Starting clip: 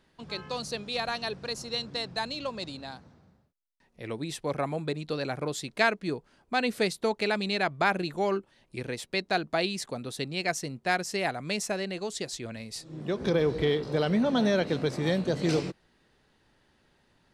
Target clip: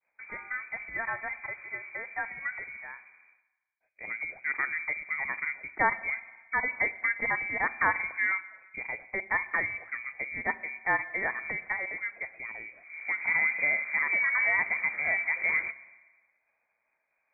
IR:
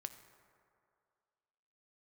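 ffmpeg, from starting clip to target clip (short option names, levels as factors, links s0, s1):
-filter_complex "[0:a]lowpass=f=2100:t=q:w=0.5098,lowpass=f=2100:t=q:w=0.6013,lowpass=f=2100:t=q:w=0.9,lowpass=f=2100:t=q:w=2.563,afreqshift=-2500,agate=range=0.0224:threshold=0.00112:ratio=3:detection=peak,asplit=2[s0][s1];[1:a]atrim=start_sample=2205,asetrate=79380,aresample=44100,lowpass=2800[s2];[s1][s2]afir=irnorm=-1:irlink=0,volume=2.99[s3];[s0][s3]amix=inputs=2:normalize=0,volume=0.531"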